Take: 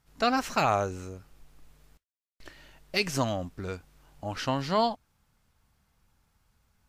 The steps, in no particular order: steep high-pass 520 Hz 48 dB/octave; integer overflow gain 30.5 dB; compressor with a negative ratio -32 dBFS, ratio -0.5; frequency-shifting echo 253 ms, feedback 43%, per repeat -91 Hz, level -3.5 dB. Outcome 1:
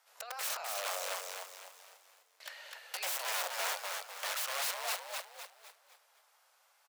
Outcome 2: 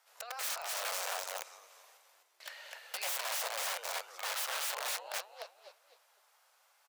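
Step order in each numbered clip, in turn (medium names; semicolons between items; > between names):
compressor with a negative ratio > integer overflow > frequency-shifting echo > steep high-pass; compressor with a negative ratio > frequency-shifting echo > integer overflow > steep high-pass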